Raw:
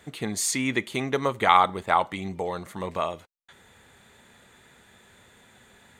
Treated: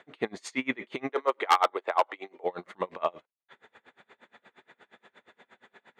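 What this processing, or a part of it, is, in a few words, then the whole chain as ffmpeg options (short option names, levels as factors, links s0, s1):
helicopter radio: -filter_complex "[0:a]highpass=320,lowpass=2600,aeval=exprs='val(0)*pow(10,-30*(0.5-0.5*cos(2*PI*8.5*n/s))/20)':c=same,asoftclip=type=hard:threshold=0.106,asettb=1/sr,asplit=3[s0][s1][s2];[s0]atrim=end=1.094[s3];[s1]atrim=start=1.09:end=2.44,asetpts=PTS-STARTPTS,afade=t=in:d=0.004:c=qsin,afade=t=out:st=1.346:d=0.004:c=qsin,highpass=f=340:w=0.5412,highpass=f=340:w=1.3066[s4];[s2]atrim=start=2.436[s5];[s3][s4]acrossfade=d=0.004:c1=hsin:c2=qsin[s6];[s6][s5]acrossfade=d=0.004:c1=qsin:c2=hsin,volume=2"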